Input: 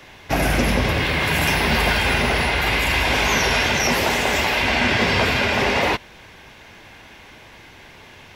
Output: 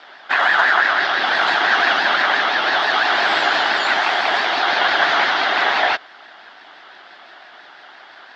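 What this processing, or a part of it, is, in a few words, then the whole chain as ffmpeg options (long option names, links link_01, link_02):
voice changer toy: -af "aeval=exprs='val(0)*sin(2*PI*1500*n/s+1500*0.2/5.9*sin(2*PI*5.9*n/s))':channel_layout=same,highpass=460,equalizer=frequency=490:width_type=q:width=4:gain=-8,equalizer=frequency=730:width_type=q:width=4:gain=6,equalizer=frequency=1100:width_type=q:width=4:gain=-3,equalizer=frequency=1600:width_type=q:width=4:gain=4,equalizer=frequency=2400:width_type=q:width=4:gain=-6,equalizer=frequency=4000:width_type=q:width=4:gain=-5,lowpass=frequency=4300:width=0.5412,lowpass=frequency=4300:width=1.3066,volume=6dB"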